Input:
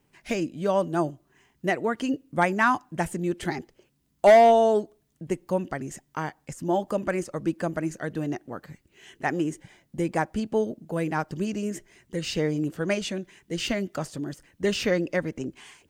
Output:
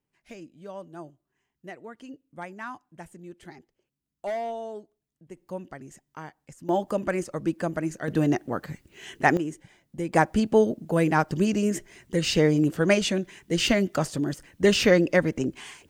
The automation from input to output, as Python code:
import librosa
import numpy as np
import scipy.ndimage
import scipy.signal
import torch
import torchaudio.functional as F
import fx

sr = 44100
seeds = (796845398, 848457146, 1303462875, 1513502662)

y = fx.gain(x, sr, db=fx.steps((0.0, -16.0), (5.37, -9.5), (6.69, 0.0), (8.08, 7.0), (9.37, -3.5), (10.13, 5.5)))